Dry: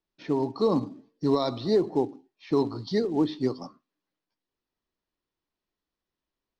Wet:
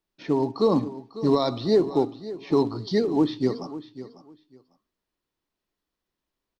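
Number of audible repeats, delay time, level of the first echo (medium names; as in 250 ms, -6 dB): 2, 548 ms, -15.0 dB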